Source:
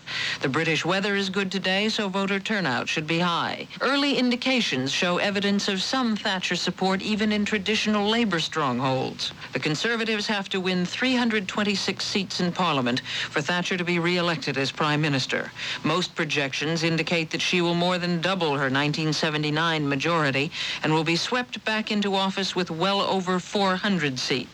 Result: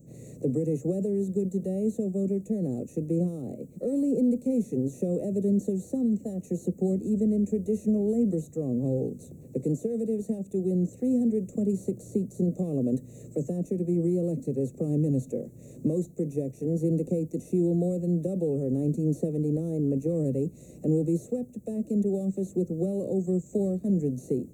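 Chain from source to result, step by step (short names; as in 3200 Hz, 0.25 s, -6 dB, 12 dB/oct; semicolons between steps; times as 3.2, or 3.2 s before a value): inverse Chebyshev band-stop 900–5200 Hz, stop band 40 dB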